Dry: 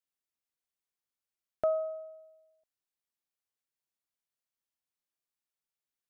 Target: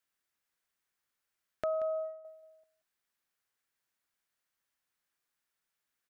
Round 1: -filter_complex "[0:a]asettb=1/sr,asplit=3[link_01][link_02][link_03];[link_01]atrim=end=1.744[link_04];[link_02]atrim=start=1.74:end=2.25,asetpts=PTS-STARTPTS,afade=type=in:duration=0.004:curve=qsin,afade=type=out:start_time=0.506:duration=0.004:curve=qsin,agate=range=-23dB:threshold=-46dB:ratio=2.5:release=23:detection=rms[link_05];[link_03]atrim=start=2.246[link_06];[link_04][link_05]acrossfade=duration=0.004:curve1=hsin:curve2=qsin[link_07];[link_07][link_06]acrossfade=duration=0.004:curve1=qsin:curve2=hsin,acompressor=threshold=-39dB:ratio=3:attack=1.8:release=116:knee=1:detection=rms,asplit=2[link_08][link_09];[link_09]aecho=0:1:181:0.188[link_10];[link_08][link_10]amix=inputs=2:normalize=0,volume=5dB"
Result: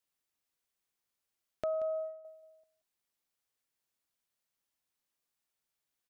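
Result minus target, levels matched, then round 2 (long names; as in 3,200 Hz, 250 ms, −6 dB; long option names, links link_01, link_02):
2,000 Hz band −5.0 dB
-filter_complex "[0:a]asettb=1/sr,asplit=3[link_01][link_02][link_03];[link_01]atrim=end=1.744[link_04];[link_02]atrim=start=1.74:end=2.25,asetpts=PTS-STARTPTS,afade=type=in:duration=0.004:curve=qsin,afade=type=out:start_time=0.506:duration=0.004:curve=qsin,agate=range=-23dB:threshold=-46dB:ratio=2.5:release=23:detection=rms[link_05];[link_03]atrim=start=2.246[link_06];[link_04][link_05]acrossfade=duration=0.004:curve1=hsin:curve2=qsin[link_07];[link_07][link_06]acrossfade=duration=0.004:curve1=qsin:curve2=hsin,acompressor=threshold=-39dB:ratio=3:attack=1.8:release=116:knee=1:detection=rms,equalizer=frequency=1600:width_type=o:width=1:gain=7.5,asplit=2[link_08][link_09];[link_09]aecho=0:1:181:0.188[link_10];[link_08][link_10]amix=inputs=2:normalize=0,volume=5dB"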